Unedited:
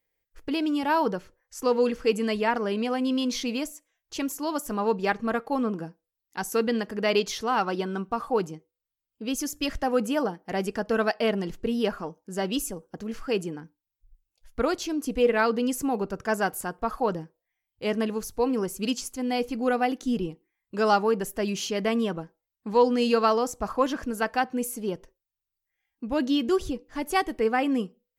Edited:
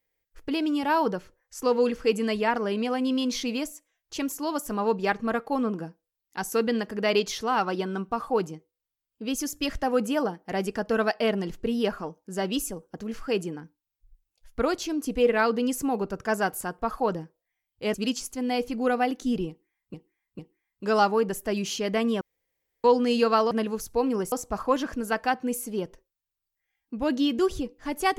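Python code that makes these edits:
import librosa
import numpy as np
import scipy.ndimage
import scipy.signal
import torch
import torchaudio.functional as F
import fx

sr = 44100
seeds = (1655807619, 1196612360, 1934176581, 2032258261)

y = fx.edit(x, sr, fx.move(start_s=17.94, length_s=0.81, to_s=23.42),
    fx.repeat(start_s=20.3, length_s=0.45, count=3),
    fx.room_tone_fill(start_s=22.12, length_s=0.63), tone=tone)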